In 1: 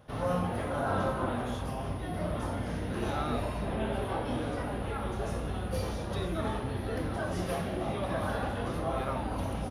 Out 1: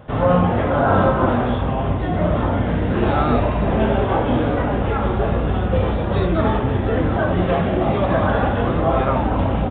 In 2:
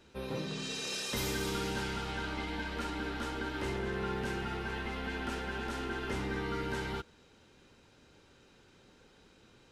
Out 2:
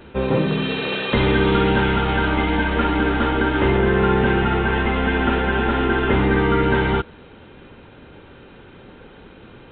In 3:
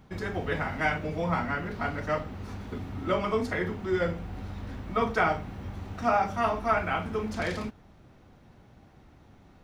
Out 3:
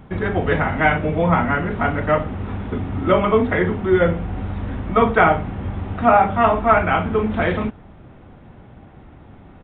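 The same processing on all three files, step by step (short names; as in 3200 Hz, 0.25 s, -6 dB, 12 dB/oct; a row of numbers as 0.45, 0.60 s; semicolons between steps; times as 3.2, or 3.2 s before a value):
high shelf 2800 Hz -8 dB; downsampling 8000 Hz; match loudness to -19 LUFS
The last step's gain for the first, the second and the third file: +15.0, +19.0, +12.0 dB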